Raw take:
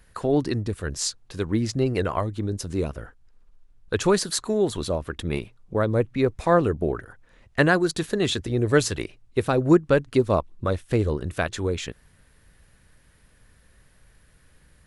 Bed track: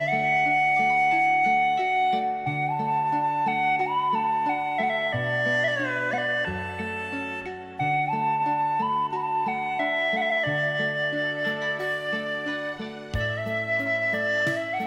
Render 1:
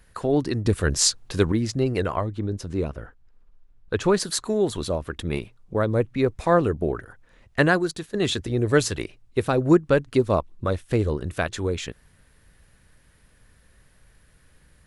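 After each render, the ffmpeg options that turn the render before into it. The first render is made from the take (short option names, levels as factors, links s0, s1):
-filter_complex "[0:a]asettb=1/sr,asplit=3[s0][s1][s2];[s0]atrim=end=2.164[s3];[s1]atrim=start=2.16:end=4.2,asetpts=PTS-STARTPTS,afade=t=in:d=0.004:c=qsin,afade=t=out:st=2.036:d=0.004:c=qsin,lowpass=f=3200:p=1[s4];[s2]atrim=start=4.196[s5];[s3][s4]acrossfade=d=0.004:c1=hsin:c2=qsin[s6];[s6][s5]acrossfade=d=0.004:c1=qsin:c2=hsin,asplit=4[s7][s8][s9][s10];[s7]atrim=end=0.652[s11];[s8]atrim=start=0.648:end=1.522,asetpts=PTS-STARTPTS,volume=2.37[s12];[s9]atrim=start=1.518:end=8.14,asetpts=PTS-STARTPTS,afade=t=out:st=6.202:d=0.42:silence=0.199526[s13];[s10]atrim=start=8.14,asetpts=PTS-STARTPTS,afade=t=in:d=0.004:c=hsin:silence=0.199526[s14];[s11][s12]acrossfade=d=0.004:c1=hsin:c2=hsin[s15];[s13][s14]concat=n=2:v=0:a=1[s16];[s15][s16]acrossfade=d=0.004:c1=hsin:c2=hsin"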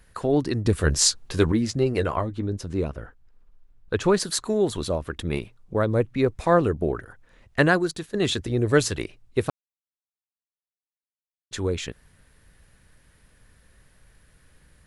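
-filter_complex "[0:a]asettb=1/sr,asplit=3[s0][s1][s2];[s0]atrim=end=0.734[s3];[s1]atrim=start=0.73:end=2.47,asetpts=PTS-STARTPTS,afade=t=in:d=0.004:c=qsin,afade=t=out:st=1.736:d=0.004:c=qsin,asplit=2[s4][s5];[s5]adelay=13,volume=0.335[s6];[s4][s6]amix=inputs=2:normalize=0,atrim=end_sample=76734[s7];[s2]atrim=start=2.466[s8];[s3][s7]acrossfade=d=0.004:c1=hsin:c2=qsin[s9];[s9][s8]acrossfade=d=0.004:c1=qsin:c2=hsin,asplit=3[s10][s11][s12];[s10]atrim=end=9.5,asetpts=PTS-STARTPTS,afade=t=out:st=9.496:d=0.004:c=hsin[s13];[s11]atrim=start=9.5:end=11.51,asetpts=PTS-STARTPTS,volume=0[s14];[s12]atrim=start=11.51,asetpts=PTS-STARTPTS,afade=t=in:d=0.004:c=hsin[s15];[s13][s14][s15]concat=n=3:v=0:a=1"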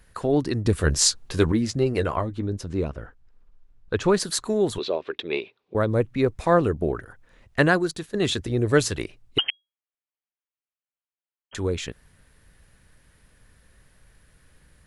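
-filter_complex "[0:a]asettb=1/sr,asplit=3[s0][s1][s2];[s0]atrim=end=2.644[s3];[s1]atrim=start=2.64:end=4.08,asetpts=PTS-STARTPTS,afade=t=in:d=0.004:c=qsin,afade=t=out:st=1.436:d=0.004:c=qsin,lowpass=8200[s4];[s2]atrim=start=4.076[s5];[s3][s4]acrossfade=d=0.004:c1=hsin:c2=qsin[s6];[s6][s5]acrossfade=d=0.004:c1=qsin:c2=hsin,asettb=1/sr,asplit=3[s7][s8][s9];[s7]atrim=end=4.784[s10];[s8]atrim=start=4.78:end=5.75,asetpts=PTS-STARTPTS,afade=t=in:d=0.004:c=qsin,afade=t=out:st=0.966:d=0.004:c=qsin,highpass=380,equalizer=f=400:t=q:w=4:g=9,equalizer=f=1300:t=q:w=4:g=-4,equalizer=f=2500:t=q:w=4:g=7,equalizer=f=3700:t=q:w=4:g=6,lowpass=f=4700:w=0.5412,lowpass=f=4700:w=1.3066[s11];[s9]atrim=start=5.746[s12];[s10][s11]acrossfade=d=0.004:c1=hsin:c2=qsin[s13];[s13][s12]acrossfade=d=0.004:c1=qsin:c2=hsin,asettb=1/sr,asplit=3[s14][s15][s16];[s14]atrim=end=9.384[s17];[s15]atrim=start=9.38:end=11.55,asetpts=PTS-STARTPTS,afade=t=in:d=0.004:c=qsin,afade=t=out:st=2.166:d=0.004:c=qsin,lowpass=f=2800:t=q:w=0.5098,lowpass=f=2800:t=q:w=0.6013,lowpass=f=2800:t=q:w=0.9,lowpass=f=2800:t=q:w=2.563,afreqshift=-3300[s18];[s16]atrim=start=11.546[s19];[s17][s18]acrossfade=d=0.004:c1=hsin:c2=qsin[s20];[s20][s19]acrossfade=d=0.004:c1=qsin:c2=hsin"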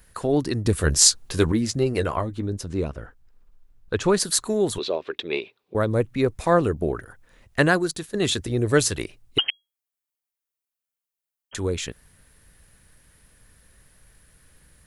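-af "highshelf=f=7600:g=11"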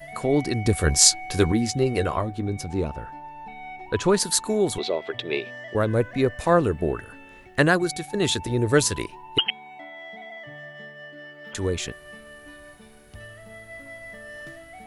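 -filter_complex "[1:a]volume=0.168[s0];[0:a][s0]amix=inputs=2:normalize=0"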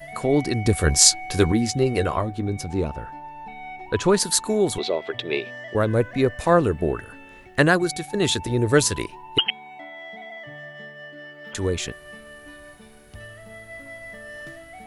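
-af "volume=1.19,alimiter=limit=0.891:level=0:latency=1"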